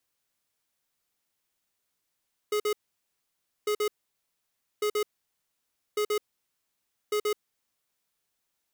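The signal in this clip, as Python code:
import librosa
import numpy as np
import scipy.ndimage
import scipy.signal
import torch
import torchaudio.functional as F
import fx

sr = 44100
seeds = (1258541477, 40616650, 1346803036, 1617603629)

y = fx.beep_pattern(sr, wave='square', hz=420.0, on_s=0.08, off_s=0.05, beeps=2, pause_s=0.94, groups=5, level_db=-26.5)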